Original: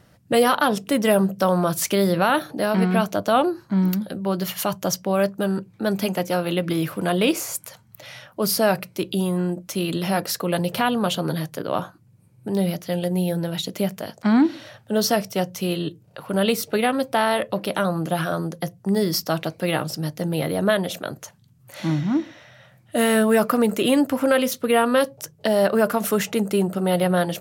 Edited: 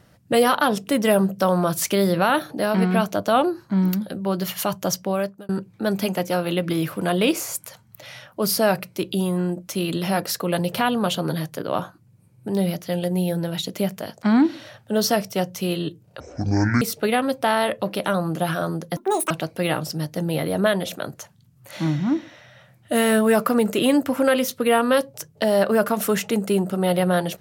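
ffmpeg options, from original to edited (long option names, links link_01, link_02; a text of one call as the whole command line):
ffmpeg -i in.wav -filter_complex "[0:a]asplit=6[link_01][link_02][link_03][link_04][link_05][link_06];[link_01]atrim=end=5.49,asetpts=PTS-STARTPTS,afade=type=out:start_time=5.04:duration=0.45[link_07];[link_02]atrim=start=5.49:end=16.204,asetpts=PTS-STARTPTS,afade=type=in:duration=0.004:curve=hsin[link_08];[link_03]atrim=start=16.2:end=16.52,asetpts=PTS-STARTPTS,asetrate=22932,aresample=44100,atrim=end_sample=27138,asetpts=PTS-STARTPTS[link_09];[link_04]atrim=start=16.516:end=18.674[link_10];[link_05]atrim=start=18.67:end=19.34,asetpts=PTS-STARTPTS,asetrate=86877,aresample=44100,atrim=end_sample=14998,asetpts=PTS-STARTPTS[link_11];[link_06]atrim=start=19.336[link_12];[link_07][link_08]concat=n=2:v=0:a=1[link_13];[link_13][link_09]acrossfade=duration=0.004:curve1=hsin:curve2=hsin[link_14];[link_14][link_10]acrossfade=duration=0.004:curve1=hsin:curve2=hsin[link_15];[link_15][link_11]acrossfade=duration=0.004:curve1=hsin:curve2=hsin[link_16];[link_16][link_12]acrossfade=duration=0.004:curve1=hsin:curve2=hsin" out.wav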